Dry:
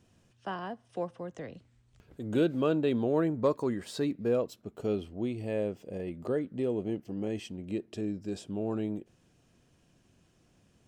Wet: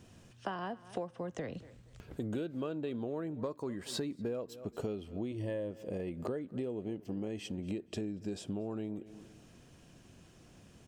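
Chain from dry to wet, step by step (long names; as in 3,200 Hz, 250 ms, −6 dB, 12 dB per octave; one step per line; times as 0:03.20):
0:05.31–0:05.71: EQ curve with evenly spaced ripples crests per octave 1.2, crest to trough 10 dB
on a send: repeating echo 235 ms, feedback 26%, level −23.5 dB
on the sum: downward compressor 12 to 1, threshold −42 dBFS, peak gain reduction 21 dB
level +7.5 dB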